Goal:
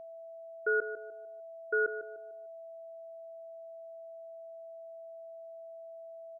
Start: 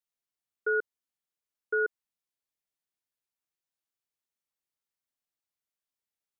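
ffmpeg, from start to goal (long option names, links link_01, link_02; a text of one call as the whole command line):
ffmpeg -i in.wav -filter_complex "[0:a]asplit=2[link_01][link_02];[link_02]adelay=150,lowpass=frequency=1100:poles=1,volume=-9dB,asplit=2[link_03][link_04];[link_04]adelay=150,lowpass=frequency=1100:poles=1,volume=0.4,asplit=2[link_05][link_06];[link_06]adelay=150,lowpass=frequency=1100:poles=1,volume=0.4,asplit=2[link_07][link_08];[link_08]adelay=150,lowpass=frequency=1100:poles=1,volume=0.4[link_09];[link_01][link_03][link_05][link_07][link_09]amix=inputs=5:normalize=0,aeval=exprs='val(0)+0.00708*sin(2*PI*660*n/s)':channel_layout=same,volume=-1.5dB" out.wav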